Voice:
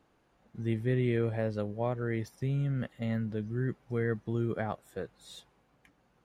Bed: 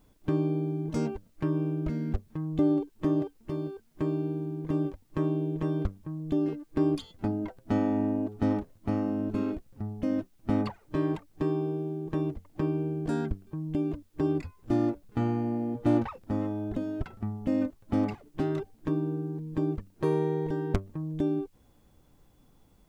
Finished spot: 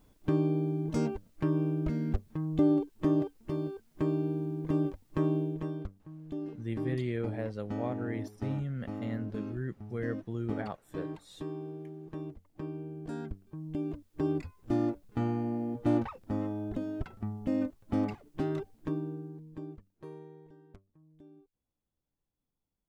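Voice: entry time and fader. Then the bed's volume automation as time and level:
6.00 s, -4.5 dB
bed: 5.37 s -0.5 dB
5.87 s -10.5 dB
12.89 s -10.5 dB
14.25 s -3 dB
18.78 s -3 dB
20.72 s -27.5 dB

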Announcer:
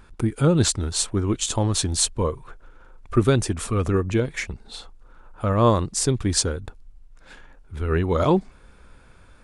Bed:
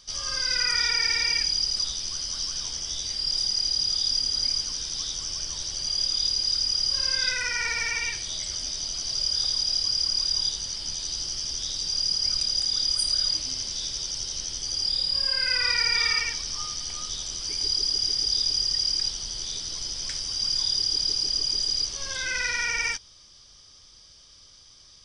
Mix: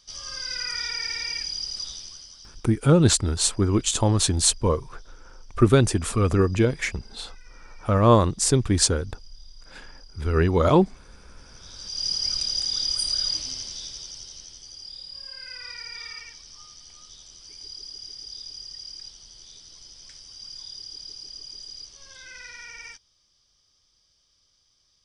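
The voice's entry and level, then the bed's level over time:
2.45 s, +1.5 dB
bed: 1.95 s -6 dB
2.83 s -28 dB
11.34 s -28 dB
12.06 s -1 dB
13.38 s -1 dB
14.78 s -14.5 dB

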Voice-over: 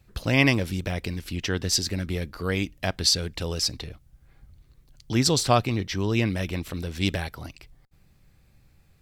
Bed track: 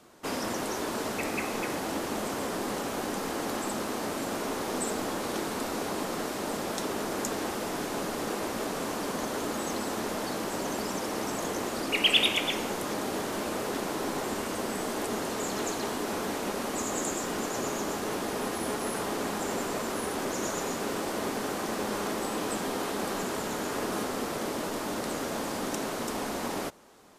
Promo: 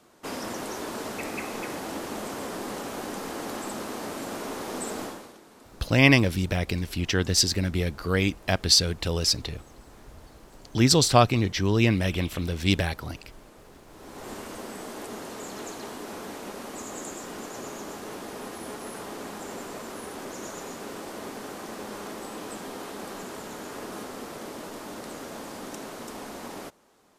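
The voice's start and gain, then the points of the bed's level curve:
5.65 s, +2.5 dB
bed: 5.04 s -2 dB
5.39 s -20 dB
13.86 s -20 dB
14.3 s -6 dB

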